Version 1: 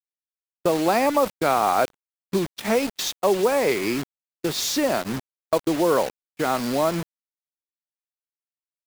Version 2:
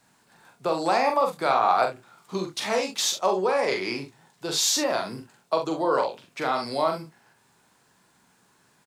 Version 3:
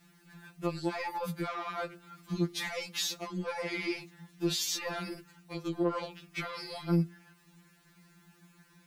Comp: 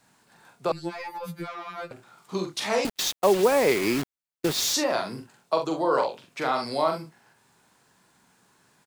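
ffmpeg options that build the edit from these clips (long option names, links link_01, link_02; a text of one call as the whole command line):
ffmpeg -i take0.wav -i take1.wav -i take2.wav -filter_complex "[1:a]asplit=3[link_01][link_02][link_03];[link_01]atrim=end=0.722[link_04];[2:a]atrim=start=0.718:end=1.912[link_05];[link_02]atrim=start=1.908:end=2.852[link_06];[0:a]atrim=start=2.848:end=4.742[link_07];[link_03]atrim=start=4.738[link_08];[link_04][link_05]acrossfade=duration=0.004:curve1=hsin:curve2=hsin[link_09];[link_09][link_06]acrossfade=duration=0.004:curve1=hsin:curve2=hsin[link_10];[link_10][link_07]acrossfade=duration=0.004:curve1=hsin:curve2=hsin[link_11];[link_11][link_08]acrossfade=duration=0.004:curve1=hsin:curve2=hsin" out.wav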